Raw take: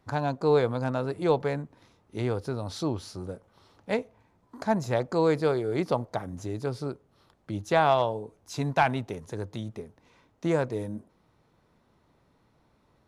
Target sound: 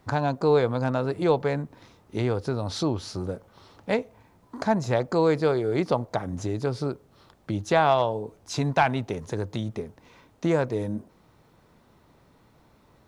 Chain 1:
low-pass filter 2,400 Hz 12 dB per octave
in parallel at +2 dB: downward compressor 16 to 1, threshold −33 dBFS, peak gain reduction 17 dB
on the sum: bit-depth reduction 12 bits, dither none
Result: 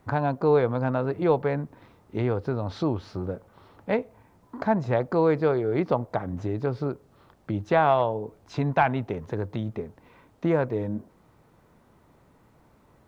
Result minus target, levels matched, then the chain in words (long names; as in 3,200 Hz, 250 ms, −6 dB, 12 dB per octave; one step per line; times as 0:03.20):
8,000 Hz band −16.5 dB
low-pass filter 8,300 Hz 12 dB per octave
in parallel at +2 dB: downward compressor 16 to 1, threshold −33 dBFS, peak gain reduction 17 dB
on the sum: bit-depth reduction 12 bits, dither none